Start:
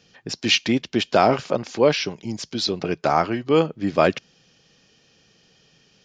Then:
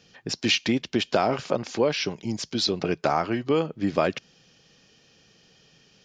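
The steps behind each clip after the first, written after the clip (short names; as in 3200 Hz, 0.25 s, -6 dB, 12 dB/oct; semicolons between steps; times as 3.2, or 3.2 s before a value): compressor 4:1, threshold -19 dBFS, peak gain reduction 7.5 dB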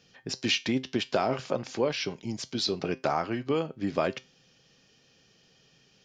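resonator 130 Hz, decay 0.25 s, harmonics all, mix 50%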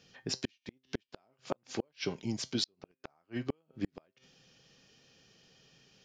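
flipped gate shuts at -19 dBFS, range -42 dB; gain -1 dB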